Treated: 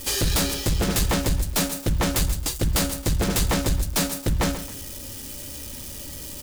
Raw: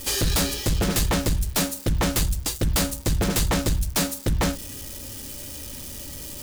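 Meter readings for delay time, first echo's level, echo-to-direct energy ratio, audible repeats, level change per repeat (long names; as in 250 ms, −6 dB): 135 ms, −12.5 dB, −12.0 dB, 2, −10.0 dB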